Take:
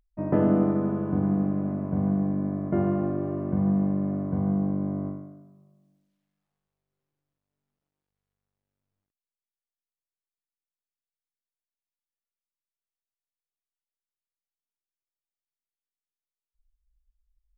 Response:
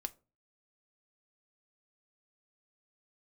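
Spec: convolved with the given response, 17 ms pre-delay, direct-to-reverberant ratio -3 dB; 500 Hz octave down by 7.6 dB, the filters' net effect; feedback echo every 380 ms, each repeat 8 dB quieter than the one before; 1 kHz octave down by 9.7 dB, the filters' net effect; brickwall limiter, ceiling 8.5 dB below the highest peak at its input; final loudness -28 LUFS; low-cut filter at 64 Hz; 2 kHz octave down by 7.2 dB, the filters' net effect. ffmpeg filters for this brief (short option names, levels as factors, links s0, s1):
-filter_complex "[0:a]highpass=64,equalizer=f=500:t=o:g=-9,equalizer=f=1000:t=o:g=-8.5,equalizer=f=2000:t=o:g=-5,alimiter=limit=0.0794:level=0:latency=1,aecho=1:1:380|760|1140|1520|1900:0.398|0.159|0.0637|0.0255|0.0102,asplit=2[s0][s1];[1:a]atrim=start_sample=2205,adelay=17[s2];[s1][s2]afir=irnorm=-1:irlink=0,volume=1.68[s3];[s0][s3]amix=inputs=2:normalize=0,volume=0.794"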